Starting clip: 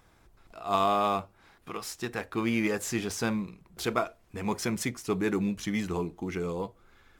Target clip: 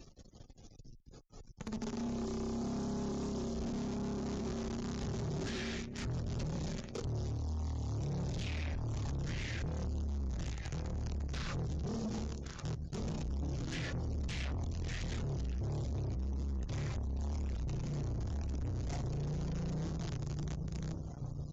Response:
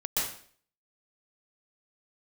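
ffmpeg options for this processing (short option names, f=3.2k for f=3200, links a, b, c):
-filter_complex "[0:a]equalizer=f=130:w=0.3:g=-4,bandreject=f=123.9:t=h:w=4,bandreject=f=247.8:t=h:w=4,bandreject=f=371.7:t=h:w=4,bandreject=f=495.6:t=h:w=4,bandreject=f=619.5:t=h:w=4,bandreject=f=743.4:t=h:w=4,bandreject=f=867.3:t=h:w=4,bandreject=f=991.2:t=h:w=4,bandreject=f=1.1151k:t=h:w=4,bandreject=f=1.239k:t=h:w=4,bandreject=f=1.3629k:t=h:w=4,bandreject=f=1.4868k:t=h:w=4,bandreject=f=1.6107k:t=h:w=4,bandreject=f=1.7346k:t=h:w=4,bandreject=f=1.8585k:t=h:w=4,bandreject=f=1.9824k:t=h:w=4,asplit=2[a][b];[b]adelay=363,lowpass=f=4.1k:p=1,volume=-13.5dB,asplit=2[c][d];[d]adelay=363,lowpass=f=4.1k:p=1,volume=0.53,asplit=2[e][f];[f]adelay=363,lowpass=f=4.1k:p=1,volume=0.53,asplit=2[g][h];[h]adelay=363,lowpass=f=4.1k:p=1,volume=0.53,asplit=2[i][j];[j]adelay=363,lowpass=f=4.1k:p=1,volume=0.53[k];[c][e][g][i][k]amix=inputs=5:normalize=0[l];[a][l]amix=inputs=2:normalize=0,acrusher=bits=8:dc=4:mix=0:aa=0.000001,highpass=f=53:w=0.5412,highpass=f=53:w=1.3066,asplit=2[m][n];[n]acompressor=threshold=-39dB:ratio=6,volume=-1dB[o];[m][o]amix=inputs=2:normalize=0,asetrate=14729,aresample=44100,acrossover=split=560|2000[p][q][r];[p]acompressor=threshold=-33dB:ratio=4[s];[q]acompressor=threshold=-50dB:ratio=4[t];[r]acompressor=threshold=-51dB:ratio=4[u];[s][t][u]amix=inputs=3:normalize=0,bass=f=250:g=10,treble=f=4k:g=11,alimiter=level_in=1dB:limit=-24dB:level=0:latency=1:release=64,volume=-1dB,asoftclip=type=hard:threshold=-36dB,afftdn=nr=33:nf=-60,volume=1dB"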